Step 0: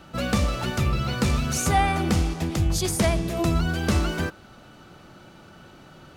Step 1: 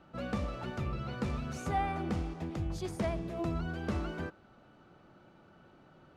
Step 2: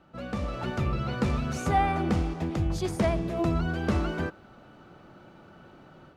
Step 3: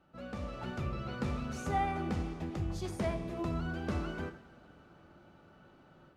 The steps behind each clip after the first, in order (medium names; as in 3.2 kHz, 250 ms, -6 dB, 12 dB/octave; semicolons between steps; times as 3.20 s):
low-pass 1.2 kHz 6 dB/octave; bass shelf 170 Hz -6 dB; trim -8.5 dB
level rider gain up to 8 dB
reverberation, pre-delay 3 ms, DRR 7 dB; trim -9 dB